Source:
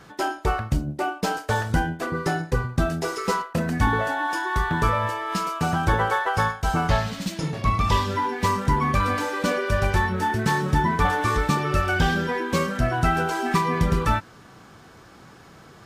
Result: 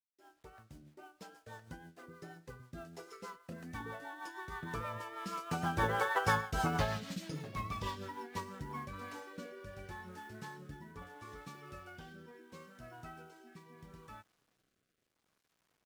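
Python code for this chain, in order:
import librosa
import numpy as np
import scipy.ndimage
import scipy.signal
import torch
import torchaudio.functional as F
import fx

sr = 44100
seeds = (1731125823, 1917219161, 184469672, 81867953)

y = fx.fade_in_head(x, sr, length_s=0.65)
y = fx.doppler_pass(y, sr, speed_mps=6, closest_m=2.9, pass_at_s=6.35)
y = fx.highpass(y, sr, hz=130.0, slope=6)
y = fx.quant_companded(y, sr, bits=6)
y = fx.rotary_switch(y, sr, hz=6.3, then_hz=0.75, switch_at_s=8.34)
y = y * 10.0 ** (-4.0 / 20.0)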